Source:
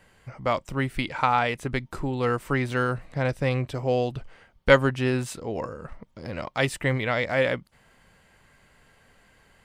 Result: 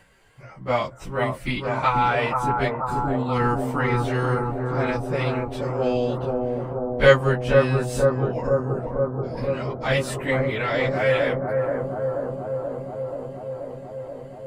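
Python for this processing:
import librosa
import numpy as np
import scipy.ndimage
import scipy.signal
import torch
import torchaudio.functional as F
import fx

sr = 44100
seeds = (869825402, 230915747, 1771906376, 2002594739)

y = fx.stretch_vocoder_free(x, sr, factor=1.5)
y = fx.echo_bbd(y, sr, ms=481, stages=4096, feedback_pct=78, wet_db=-3.0)
y = y * 10.0 ** (3.5 / 20.0)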